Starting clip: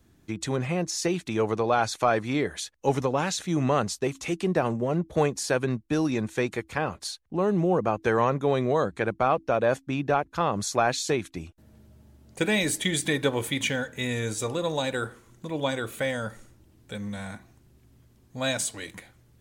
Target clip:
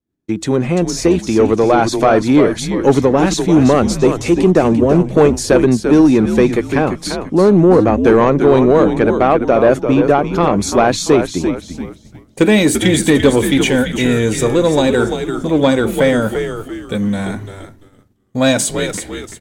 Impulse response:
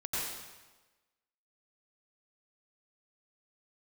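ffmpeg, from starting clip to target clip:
-filter_complex "[0:a]asplit=5[link_01][link_02][link_03][link_04][link_05];[link_02]adelay=342,afreqshift=-100,volume=-8.5dB[link_06];[link_03]adelay=684,afreqshift=-200,volume=-16.7dB[link_07];[link_04]adelay=1026,afreqshift=-300,volume=-24.9dB[link_08];[link_05]adelay=1368,afreqshift=-400,volume=-33dB[link_09];[link_01][link_06][link_07][link_08][link_09]amix=inputs=5:normalize=0,agate=range=-33dB:threshold=-42dB:ratio=3:detection=peak,equalizer=frequency=300:width_type=o:width=1.9:gain=9.5,dynaudnorm=framelen=620:gausssize=5:maxgain=5dB,asoftclip=type=tanh:threshold=-7.5dB,volume=6.5dB"

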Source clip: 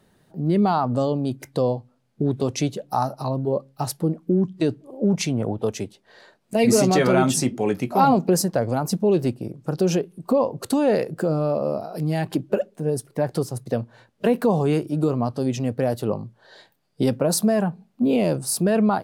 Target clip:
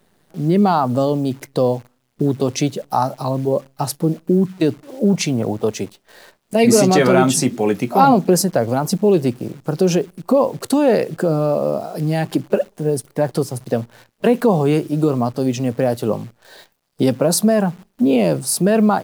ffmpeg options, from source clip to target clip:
ffmpeg -i in.wav -af "highpass=110,acrusher=bits=9:dc=4:mix=0:aa=0.000001,volume=5dB" out.wav

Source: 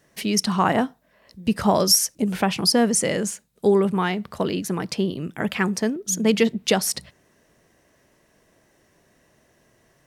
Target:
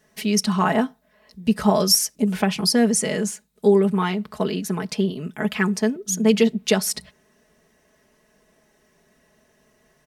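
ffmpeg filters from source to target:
ffmpeg -i in.wav -af "aecho=1:1:4.7:0.69,volume=-2dB" out.wav

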